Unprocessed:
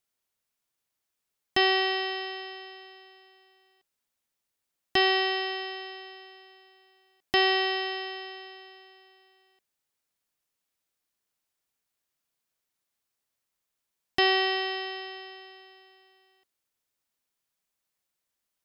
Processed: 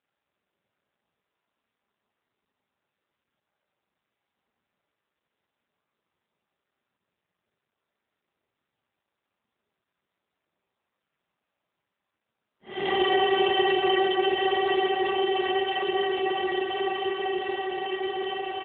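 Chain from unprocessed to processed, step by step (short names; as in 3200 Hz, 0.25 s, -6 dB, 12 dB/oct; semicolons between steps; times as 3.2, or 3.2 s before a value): low-pass opened by the level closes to 1400 Hz, open at -26.5 dBFS; Paulstretch 12×, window 0.05 s, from 3.88; comb 5 ms, depth 44%; AMR-NB 7.4 kbps 8000 Hz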